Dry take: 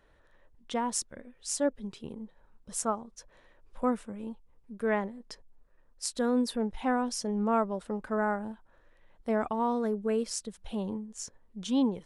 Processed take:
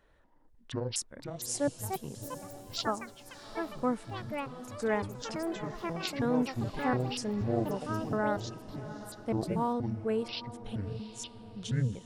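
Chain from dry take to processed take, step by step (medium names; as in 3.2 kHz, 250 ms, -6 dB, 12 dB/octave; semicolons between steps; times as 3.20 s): pitch shift switched off and on -11.5 st, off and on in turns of 239 ms; echo that smears into a reverb 740 ms, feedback 45%, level -14 dB; ever faster or slower copies 701 ms, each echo +5 st, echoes 3, each echo -6 dB; trim -2 dB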